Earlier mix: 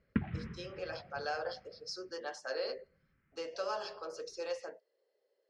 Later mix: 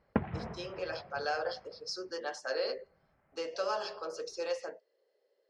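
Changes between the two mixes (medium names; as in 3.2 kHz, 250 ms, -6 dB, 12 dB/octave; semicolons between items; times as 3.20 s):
speech +3.5 dB; background: remove Butterworth band-stop 690 Hz, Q 0.59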